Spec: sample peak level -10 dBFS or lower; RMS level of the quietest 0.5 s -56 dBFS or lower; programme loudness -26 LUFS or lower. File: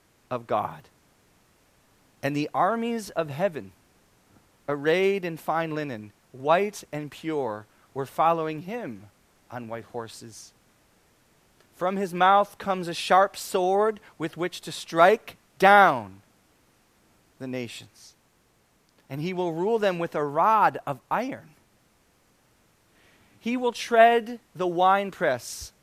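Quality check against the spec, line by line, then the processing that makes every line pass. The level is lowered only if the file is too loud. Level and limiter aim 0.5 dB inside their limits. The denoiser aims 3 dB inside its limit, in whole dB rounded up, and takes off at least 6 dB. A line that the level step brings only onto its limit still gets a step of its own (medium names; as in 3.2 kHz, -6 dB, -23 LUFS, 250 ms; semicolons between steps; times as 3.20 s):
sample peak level -3.5 dBFS: fail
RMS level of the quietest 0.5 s -65 dBFS: pass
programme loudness -24.5 LUFS: fail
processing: trim -2 dB; peak limiter -10.5 dBFS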